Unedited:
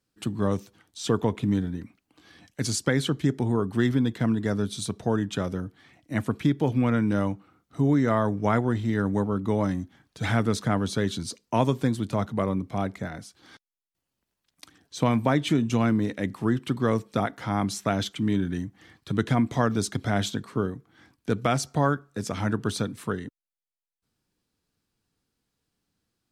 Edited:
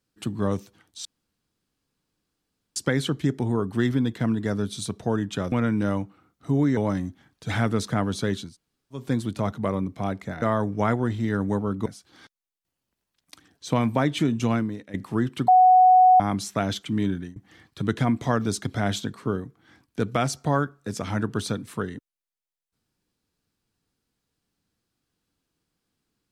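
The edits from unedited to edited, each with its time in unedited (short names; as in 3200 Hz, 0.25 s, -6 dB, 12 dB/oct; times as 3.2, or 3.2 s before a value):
1.05–2.76 room tone
5.52–6.82 cut
8.07–9.51 move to 13.16
11.19–11.76 room tone, crossfade 0.24 s
15.83–16.24 fade out quadratic, to -13 dB
16.78–17.5 bleep 740 Hz -11 dBFS
18.41–18.66 fade out, to -21.5 dB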